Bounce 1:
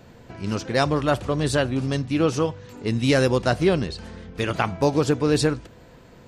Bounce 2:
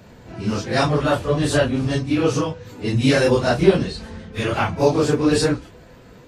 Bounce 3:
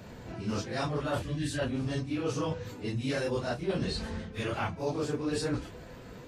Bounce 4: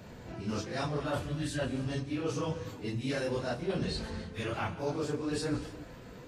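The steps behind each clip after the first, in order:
phase scrambler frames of 0.1 s; gain +3 dB
spectral gain 1.22–1.59, 350–1500 Hz -14 dB; reverse; compressor 6:1, threshold -28 dBFS, peak gain reduction 19.5 dB; reverse; gain -1.5 dB
non-linear reverb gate 0.33 s flat, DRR 12 dB; gain -2 dB

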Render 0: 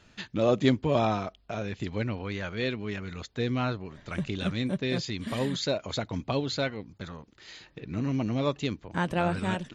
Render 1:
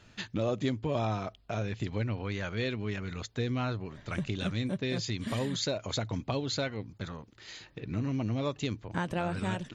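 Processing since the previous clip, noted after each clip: bell 110 Hz +8 dB 0.2 oct; compressor 3:1, threshold -29 dBFS, peak gain reduction 9.5 dB; dynamic EQ 6600 Hz, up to +4 dB, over -56 dBFS, Q 2.1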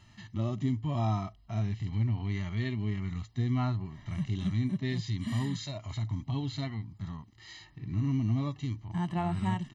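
comb 1 ms, depth 84%; harmonic-percussive split percussive -18 dB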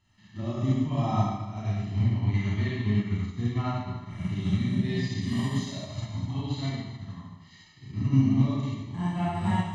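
Schroeder reverb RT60 1.5 s, combs from 30 ms, DRR -7.5 dB; upward expander 1.5:1, over -44 dBFS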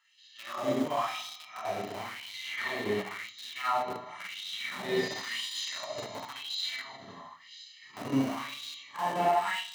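in parallel at -11 dB: Schmitt trigger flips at -28.5 dBFS; on the sum: LFO high-pass sine 0.95 Hz 440–3800 Hz; shoebox room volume 280 m³, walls furnished, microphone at 0.39 m; gain +2 dB

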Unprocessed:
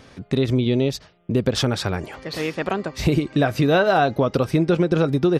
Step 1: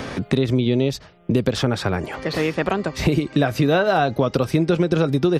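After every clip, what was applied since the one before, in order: three-band squash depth 70%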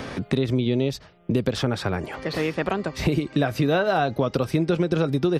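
bell 6800 Hz -2 dB 0.36 oct; gain -3.5 dB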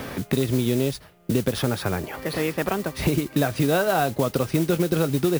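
careless resampling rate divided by 3×, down none, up hold; modulation noise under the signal 16 dB

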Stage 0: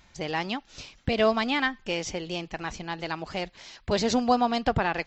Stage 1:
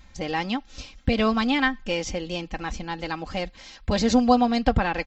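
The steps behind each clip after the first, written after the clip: low shelf 160 Hz +10 dB; comb 3.8 ms, depth 57%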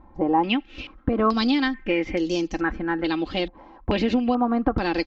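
bell 330 Hz +14.5 dB 0.7 oct; compressor 6:1, threshold -17 dBFS, peak gain reduction 8.5 dB; stepped low-pass 2.3 Hz 930–6100 Hz; gain -1.5 dB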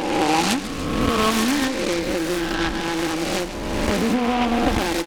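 spectral swells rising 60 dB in 1.75 s; echo 0.144 s -12 dB; noise-modulated delay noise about 1600 Hz, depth 0.094 ms; gain -1.5 dB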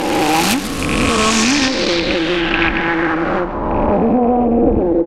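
rattling part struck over -24 dBFS, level -11 dBFS; soft clip -15 dBFS, distortion -15 dB; low-pass sweep 13000 Hz -> 480 Hz, 0.61–4.57; gain +7 dB

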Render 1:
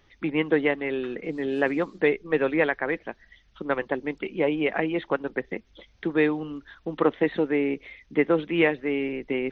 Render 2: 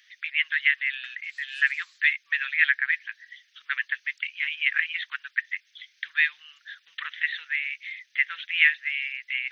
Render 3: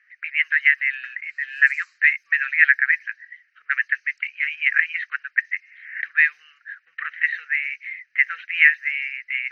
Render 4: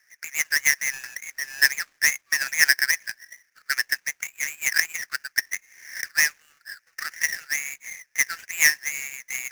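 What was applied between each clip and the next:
elliptic high-pass 1700 Hz, stop band 60 dB; gain +8.5 dB
spectral repair 5.65–5.98, 840–3000 Hz both; low-pass opened by the level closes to 1700 Hz, open at -21.5 dBFS; fixed phaser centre 940 Hz, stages 6; gain +7 dB
switching dead time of 0.14 ms

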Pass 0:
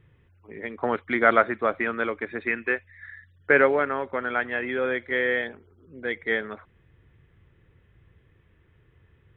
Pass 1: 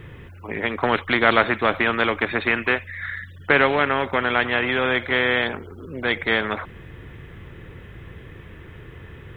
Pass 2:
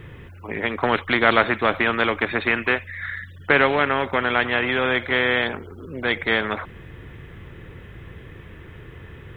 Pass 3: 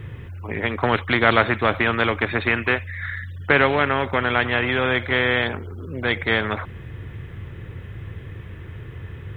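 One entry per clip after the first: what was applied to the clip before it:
spectral compressor 2:1; gain +3.5 dB
nothing audible
bell 100 Hz +9.5 dB 0.88 oct

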